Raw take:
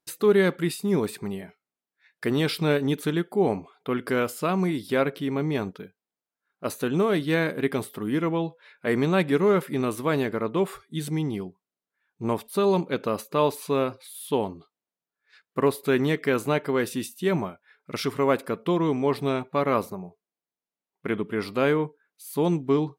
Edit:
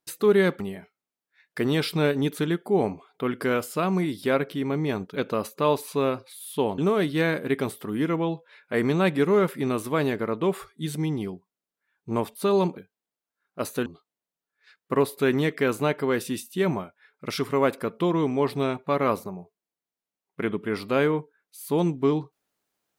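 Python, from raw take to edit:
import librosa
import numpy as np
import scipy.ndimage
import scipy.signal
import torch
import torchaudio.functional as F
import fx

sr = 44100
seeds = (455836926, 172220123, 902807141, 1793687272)

y = fx.edit(x, sr, fx.cut(start_s=0.6, length_s=0.66),
    fx.swap(start_s=5.82, length_s=1.09, other_s=12.9, other_length_s=1.62), tone=tone)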